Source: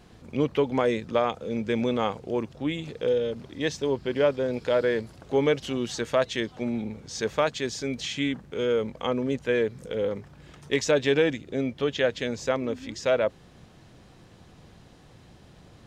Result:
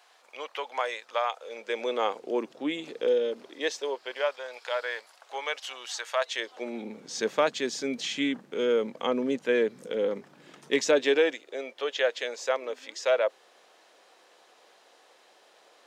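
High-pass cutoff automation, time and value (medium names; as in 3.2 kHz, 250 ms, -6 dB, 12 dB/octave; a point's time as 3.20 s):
high-pass 24 dB/octave
1.29 s 680 Hz
2.35 s 270 Hz
3.26 s 270 Hz
4.37 s 730 Hz
6.15 s 730 Hz
7.00 s 210 Hz
10.82 s 210 Hz
11.46 s 470 Hz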